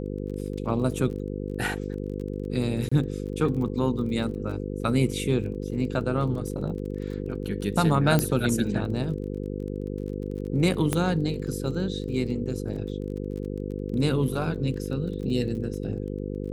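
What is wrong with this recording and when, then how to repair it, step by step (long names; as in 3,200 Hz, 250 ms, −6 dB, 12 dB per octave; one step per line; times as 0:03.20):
mains buzz 50 Hz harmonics 10 −32 dBFS
surface crackle 24 per second −36 dBFS
0:02.89–0:02.92: drop-out 25 ms
0:08.19: click −9 dBFS
0:10.93: click −10 dBFS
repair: click removal
hum removal 50 Hz, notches 10
repair the gap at 0:02.89, 25 ms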